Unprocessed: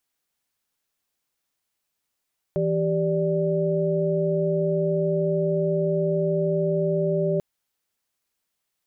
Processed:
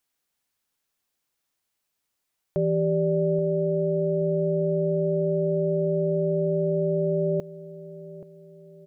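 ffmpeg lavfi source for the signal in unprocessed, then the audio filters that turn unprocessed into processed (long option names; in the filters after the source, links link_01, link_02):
-f lavfi -i "aevalsrc='0.0596*(sin(2*PI*164.81*t)+sin(2*PI*392*t)+sin(2*PI*587.33*t))':duration=4.84:sample_rate=44100"
-filter_complex "[0:a]asplit=2[link_01][link_02];[link_02]adelay=828,lowpass=frequency=800:poles=1,volume=-14dB,asplit=2[link_03][link_04];[link_04]adelay=828,lowpass=frequency=800:poles=1,volume=0.48,asplit=2[link_05][link_06];[link_06]adelay=828,lowpass=frequency=800:poles=1,volume=0.48,asplit=2[link_07][link_08];[link_08]adelay=828,lowpass=frequency=800:poles=1,volume=0.48,asplit=2[link_09][link_10];[link_10]adelay=828,lowpass=frequency=800:poles=1,volume=0.48[link_11];[link_01][link_03][link_05][link_07][link_09][link_11]amix=inputs=6:normalize=0"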